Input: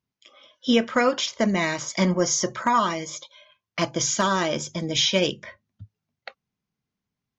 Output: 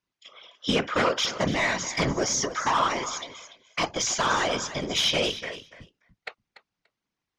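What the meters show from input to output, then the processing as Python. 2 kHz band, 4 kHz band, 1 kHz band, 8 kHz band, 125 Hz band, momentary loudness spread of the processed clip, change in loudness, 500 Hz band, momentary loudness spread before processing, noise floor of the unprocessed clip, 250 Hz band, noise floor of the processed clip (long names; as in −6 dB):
+0.5 dB, −0.5 dB, −1.0 dB, can't be measured, −4.0 dB, 17 LU, −2.5 dB, −3.5 dB, 11 LU, below −85 dBFS, −6.5 dB, below −85 dBFS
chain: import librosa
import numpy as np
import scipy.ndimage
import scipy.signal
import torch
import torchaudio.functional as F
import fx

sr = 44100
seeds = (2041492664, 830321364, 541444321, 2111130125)

p1 = fx.low_shelf(x, sr, hz=420.0, db=-11.5)
p2 = 10.0 ** (-23.0 / 20.0) * np.tanh(p1 / 10.0 ** (-23.0 / 20.0))
p3 = fx.air_absorb(p2, sr, metres=58.0)
p4 = p3 + fx.echo_feedback(p3, sr, ms=290, feedback_pct=15, wet_db=-13.5, dry=0)
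p5 = fx.whisperise(p4, sr, seeds[0])
y = p5 * librosa.db_to_amplitude(5.0)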